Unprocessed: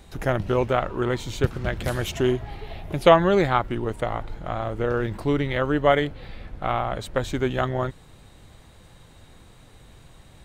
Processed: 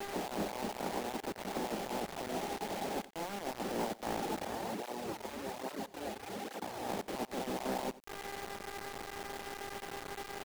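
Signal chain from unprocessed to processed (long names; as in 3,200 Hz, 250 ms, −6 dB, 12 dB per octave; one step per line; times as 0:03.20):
ceiling on every frequency bin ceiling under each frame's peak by 24 dB
hum with harmonics 400 Hz, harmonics 7, −44 dBFS −3 dB per octave
Butterworth high-pass 180 Hz 72 dB per octave
compressor whose output falls as the input rises −29 dBFS, ratio −1
reverb reduction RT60 0.71 s
elliptic low-pass filter 860 Hz, stop band 50 dB
soft clipping −28 dBFS, distortion −12 dB
dynamic equaliser 390 Hz, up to −4 dB, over −44 dBFS, Q 0.7
bit reduction 7 bits
single-tap delay 89 ms −18.5 dB
0:04.45–0:06.89: through-zero flanger with one copy inverted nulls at 1.2 Hz, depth 7.3 ms
level +1 dB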